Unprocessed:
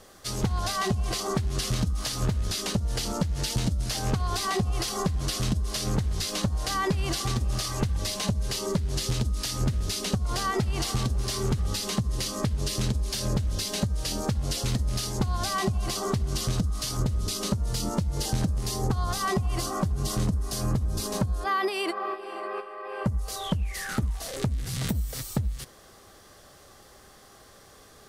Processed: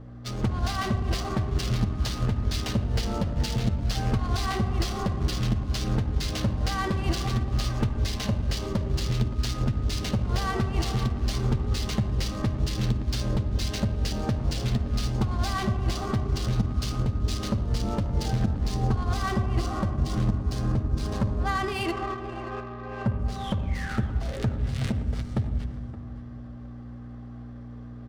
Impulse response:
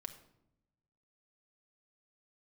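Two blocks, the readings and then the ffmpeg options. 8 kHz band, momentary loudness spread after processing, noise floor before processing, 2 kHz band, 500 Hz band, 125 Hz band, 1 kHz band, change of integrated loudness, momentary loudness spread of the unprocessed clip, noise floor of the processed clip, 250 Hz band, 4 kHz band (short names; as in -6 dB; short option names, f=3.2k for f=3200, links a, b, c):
-8.5 dB, 7 LU, -53 dBFS, -0.5 dB, -1.5 dB, +2.5 dB, -1.0 dB, +0.5 dB, 3 LU, -40 dBFS, +1.5 dB, -3.5 dB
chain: -filter_complex "[0:a]aeval=exprs='val(0)+0.0112*(sin(2*PI*60*n/s)+sin(2*PI*2*60*n/s)/2+sin(2*PI*3*60*n/s)/3+sin(2*PI*4*60*n/s)/4+sin(2*PI*5*60*n/s)/5)':c=same,aecho=1:1:571:0.178[a];[1:a]atrim=start_sample=2205,asetrate=22491,aresample=44100[b];[a][b]afir=irnorm=-1:irlink=0,adynamicsmooth=sensitivity=6.5:basefreq=1.4k"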